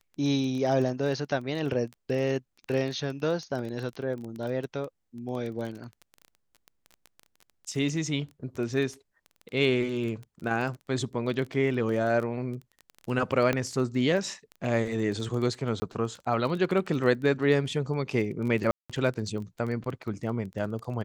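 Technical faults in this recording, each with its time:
crackle 17 per s -33 dBFS
13.53 s: pop -13 dBFS
15.80–15.82 s: dropout 20 ms
18.71–18.90 s: dropout 186 ms

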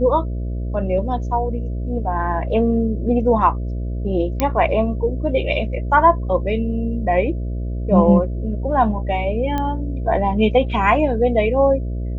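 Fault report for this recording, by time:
buzz 60 Hz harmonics 11 -24 dBFS
4.40 s: pop -4 dBFS
9.58 s: pop -11 dBFS

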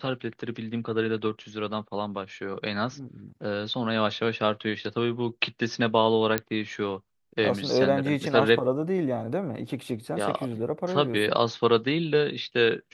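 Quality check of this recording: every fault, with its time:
6.38 s: pop -8 dBFS

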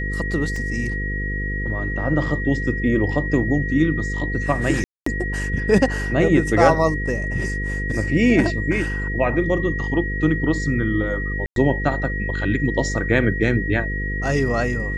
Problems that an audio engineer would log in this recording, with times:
buzz 50 Hz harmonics 10 -26 dBFS
whine 1.9 kHz -27 dBFS
0.56 s: dropout 2.2 ms
4.84–5.06 s: dropout 224 ms
11.46–11.56 s: dropout 102 ms

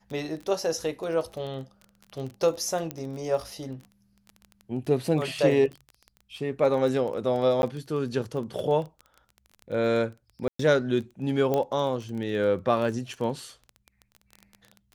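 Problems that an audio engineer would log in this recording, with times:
crackle 20 per s -33 dBFS
2.91 s: pop -15 dBFS
7.62–7.63 s: dropout 11 ms
10.48–10.59 s: dropout 114 ms
11.54 s: pop -14 dBFS

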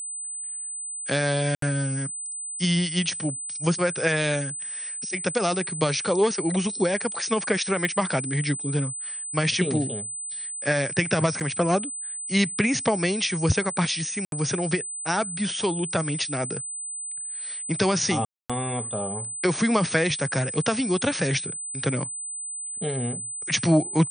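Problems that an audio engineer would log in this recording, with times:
whine 8.1 kHz -31 dBFS
1.55–1.62 s: dropout 73 ms
7.85 s: pop -13 dBFS
11.40–11.41 s: dropout 7.6 ms
14.25–14.32 s: dropout 72 ms
18.25–18.50 s: dropout 246 ms

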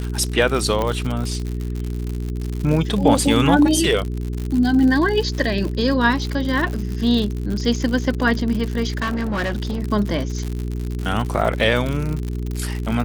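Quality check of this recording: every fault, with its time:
crackle 95 per s -24 dBFS
hum 60 Hz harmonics 7 -25 dBFS
0.82 s: pop -10 dBFS
8.97–9.80 s: clipped -19 dBFS

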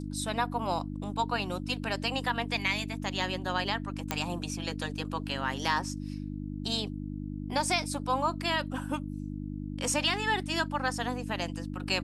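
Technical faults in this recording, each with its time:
hum 50 Hz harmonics 6 -37 dBFS
4.11 s: pop -12 dBFS

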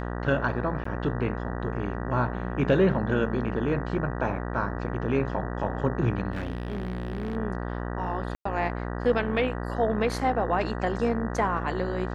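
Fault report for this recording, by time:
buzz 60 Hz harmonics 32 -32 dBFS
0.84–0.85 s: dropout 14 ms
6.31–7.37 s: clipped -27 dBFS
8.35–8.45 s: dropout 104 ms

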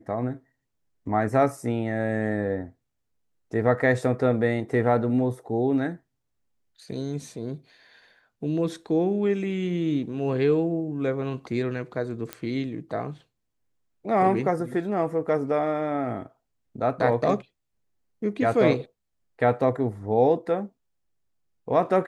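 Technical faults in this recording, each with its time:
12.33 s: pop -15 dBFS

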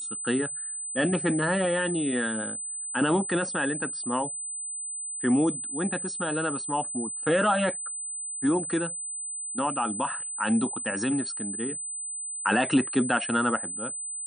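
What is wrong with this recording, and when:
whine 8.1 kHz -32 dBFS

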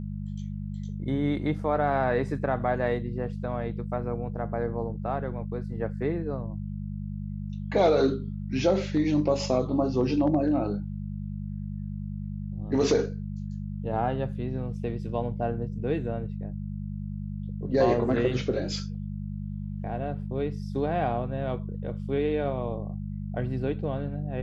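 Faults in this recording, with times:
hum 50 Hz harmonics 4 -34 dBFS

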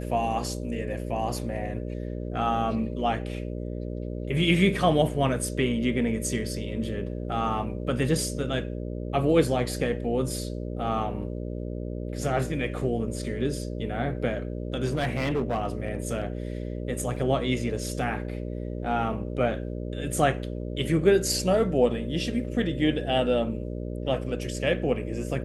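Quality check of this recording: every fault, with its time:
buzz 60 Hz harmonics 10 -33 dBFS
14.85–16.27 s: clipped -21.5 dBFS
17.16 s: dropout 4 ms

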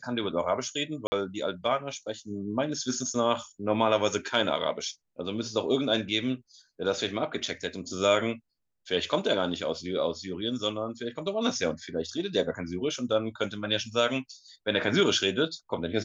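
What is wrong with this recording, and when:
1.07–1.12 s: dropout 50 ms

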